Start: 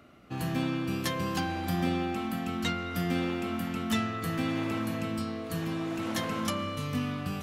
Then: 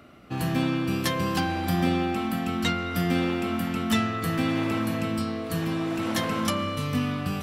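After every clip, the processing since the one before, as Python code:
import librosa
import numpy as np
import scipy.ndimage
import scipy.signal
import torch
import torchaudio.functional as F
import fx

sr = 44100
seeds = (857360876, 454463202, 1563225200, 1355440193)

y = fx.notch(x, sr, hz=6600.0, q=17.0)
y = y * librosa.db_to_amplitude(5.0)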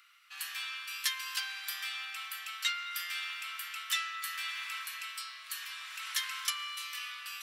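y = scipy.signal.sosfilt(scipy.signal.bessel(8, 2200.0, 'highpass', norm='mag', fs=sr, output='sos'), x)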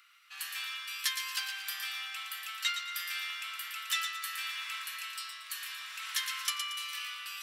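y = fx.echo_wet_highpass(x, sr, ms=115, feedback_pct=35, hz=1800.0, wet_db=-6.5)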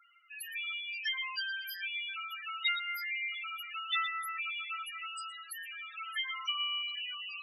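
y = fx.dynamic_eq(x, sr, hz=3900.0, q=3.3, threshold_db=-47.0, ratio=4.0, max_db=-4)
y = fx.spec_topn(y, sr, count=4)
y = y * librosa.db_to_amplitude(6.5)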